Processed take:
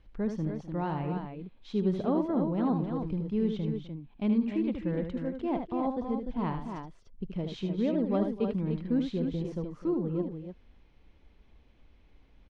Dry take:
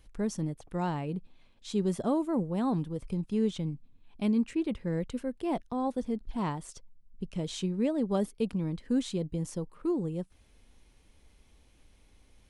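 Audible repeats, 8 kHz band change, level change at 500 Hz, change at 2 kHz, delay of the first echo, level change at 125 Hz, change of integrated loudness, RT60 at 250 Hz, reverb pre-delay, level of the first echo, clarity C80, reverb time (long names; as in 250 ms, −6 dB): 3, below −15 dB, +1.0 dB, −1.0 dB, 76 ms, +1.0 dB, +1.0 dB, no reverb audible, no reverb audible, −7.0 dB, no reverb audible, no reverb audible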